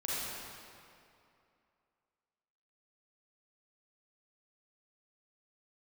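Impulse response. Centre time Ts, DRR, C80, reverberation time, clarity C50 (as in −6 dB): 180 ms, −8.0 dB, −3.0 dB, 2.6 s, −5.5 dB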